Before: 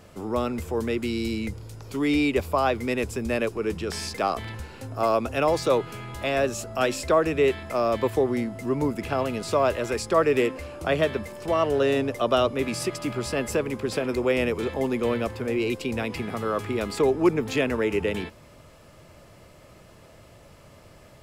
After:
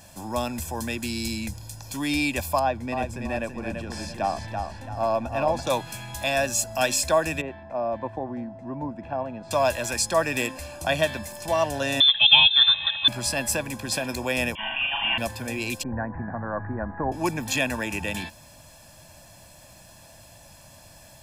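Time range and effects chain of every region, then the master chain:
0:02.59–0:05.67: low-pass filter 1,000 Hz 6 dB per octave + feedback echo with a swinging delay time 333 ms, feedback 37%, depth 71 cents, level −5.5 dB
0:07.41–0:09.51: Bessel low-pass filter 790 Hz + low-shelf EQ 170 Hz −8.5 dB
0:12.00–0:13.08: comb filter 4.1 ms, depth 98% + voice inversion scrambler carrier 3,800 Hz
0:14.55–0:15.18: spectral tilt +3.5 dB per octave + flutter between parallel walls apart 6.8 metres, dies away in 0.77 s + voice inversion scrambler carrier 3,300 Hz
0:15.83–0:17.12: Butterworth low-pass 1,800 Hz 72 dB per octave + low-shelf EQ 68 Hz +9 dB
whole clip: bass and treble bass −4 dB, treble +11 dB; comb filter 1.2 ms, depth 84%; level −1.5 dB

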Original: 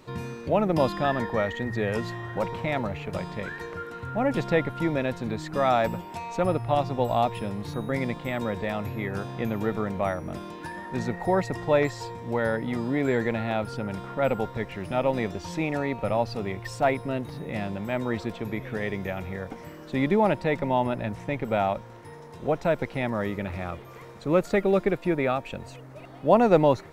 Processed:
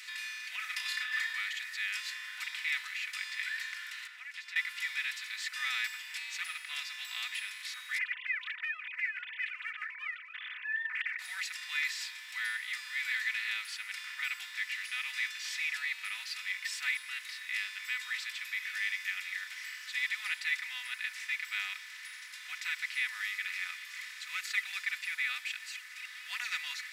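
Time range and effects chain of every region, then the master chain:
0:00.56–0:01.33: elliptic high-pass filter 690 Hz + compressor whose output falls as the input rises −31 dBFS + flutter between parallel walls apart 5.5 metres, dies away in 0.21 s
0:04.07–0:04.56: high-shelf EQ 8,400 Hz −11 dB + noise gate −27 dBFS, range −8 dB + downward compressor 4 to 1, threshold −38 dBFS
0:07.98–0:11.19: three sine waves on the formant tracks + highs frequency-modulated by the lows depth 0.11 ms
whole clip: compressor on every frequency bin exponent 0.6; Butterworth high-pass 1,800 Hz 36 dB per octave; comb filter 4 ms, depth 80%; level −2.5 dB

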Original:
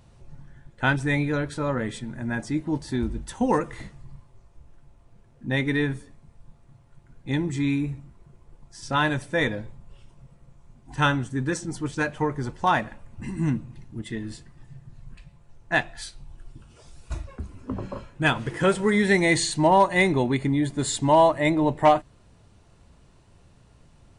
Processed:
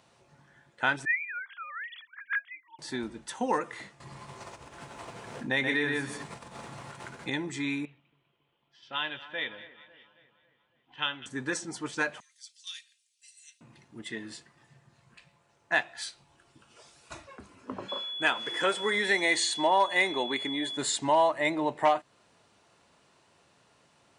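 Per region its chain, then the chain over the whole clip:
0:01.05–0:02.79: three sine waves on the formant tracks + high-pass filter 1,400 Hz 24 dB per octave
0:04.00–0:07.30: mains-hum notches 50/100/150/200/250/300/350 Hz + single-tap delay 126 ms −6.5 dB + envelope flattener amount 70%
0:07.85–0:11.26: transistor ladder low-pass 3,300 Hz, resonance 80% + echo with a time of its own for lows and highs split 1,700 Hz, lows 274 ms, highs 198 ms, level −16 dB
0:12.20–0:13.61: inverse Chebyshev high-pass filter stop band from 660 Hz, stop band 80 dB + comb filter 3.8 ms, depth 56%
0:17.88–0:20.76: high-pass filter 250 Hz + steady tone 3,400 Hz −35 dBFS
whole clip: meter weighting curve A; downward compressor 1.5 to 1, threshold −28 dBFS

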